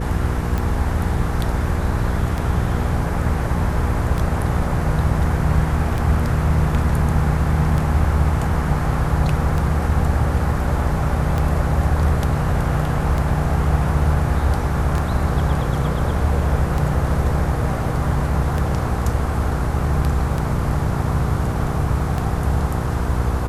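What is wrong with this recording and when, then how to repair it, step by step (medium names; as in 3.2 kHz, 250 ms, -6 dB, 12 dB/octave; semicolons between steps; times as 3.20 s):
hum 60 Hz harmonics 8 -24 dBFS
tick 33 1/3 rpm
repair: de-click; de-hum 60 Hz, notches 8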